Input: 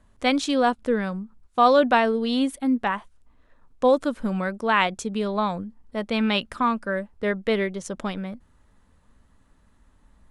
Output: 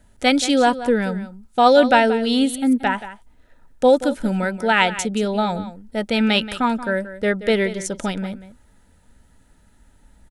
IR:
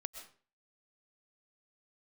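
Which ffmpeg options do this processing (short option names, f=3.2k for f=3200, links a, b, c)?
-filter_complex "[0:a]asuperstop=centerf=1100:order=12:qfactor=5,highshelf=f=7k:g=9.5,asplit=2[a][b];[b]aecho=0:1:179:0.2[c];[a][c]amix=inputs=2:normalize=0,volume=4.5dB"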